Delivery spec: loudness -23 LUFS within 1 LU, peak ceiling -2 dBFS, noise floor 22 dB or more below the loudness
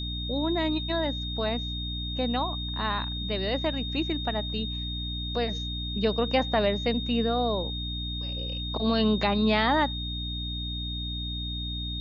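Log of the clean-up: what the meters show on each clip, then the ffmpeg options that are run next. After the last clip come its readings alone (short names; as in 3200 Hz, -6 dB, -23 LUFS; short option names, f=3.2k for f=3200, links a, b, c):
hum 60 Hz; harmonics up to 300 Hz; hum level -32 dBFS; steady tone 3700 Hz; tone level -34 dBFS; loudness -28.0 LUFS; peak -12.0 dBFS; loudness target -23.0 LUFS
-> -af "bandreject=f=60:t=h:w=6,bandreject=f=120:t=h:w=6,bandreject=f=180:t=h:w=6,bandreject=f=240:t=h:w=6,bandreject=f=300:t=h:w=6"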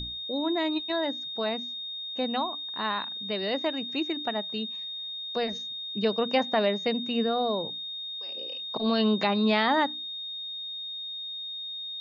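hum none; steady tone 3700 Hz; tone level -34 dBFS
-> -af "bandreject=f=3.7k:w=30"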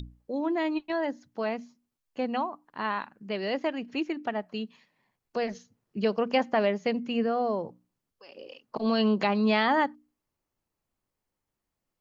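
steady tone none; loudness -29.0 LUFS; peak -13.0 dBFS; loudness target -23.0 LUFS
-> -af "volume=6dB"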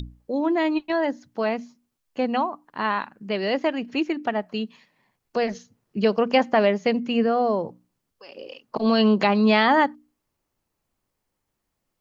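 loudness -23.0 LUFS; peak -7.0 dBFS; noise floor -79 dBFS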